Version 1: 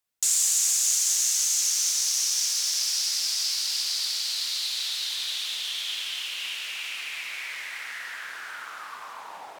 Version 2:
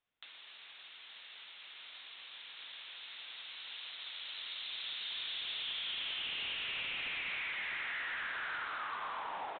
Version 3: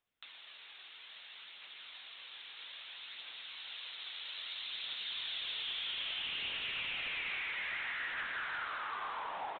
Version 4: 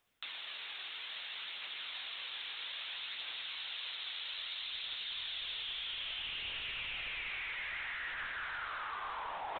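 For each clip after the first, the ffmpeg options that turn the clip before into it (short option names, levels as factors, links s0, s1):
-af "acompressor=threshold=0.02:ratio=6,aresample=8000,asoftclip=type=hard:threshold=0.015,aresample=44100,volume=1.12"
-af "aphaser=in_gain=1:out_gain=1:delay=2.7:decay=0.22:speed=0.61:type=triangular"
-af "asubboost=boost=3.5:cutoff=98,areverse,acompressor=threshold=0.00355:ratio=6,areverse,volume=2.99"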